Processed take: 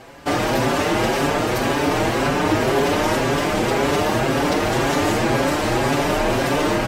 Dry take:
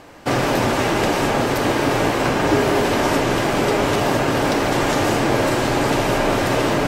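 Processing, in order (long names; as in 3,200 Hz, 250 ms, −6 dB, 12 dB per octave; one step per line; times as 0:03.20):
in parallel at −4 dB: gain into a clipping stage and back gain 23.5 dB
on the sum: barber-pole flanger 5.8 ms +1.9 Hz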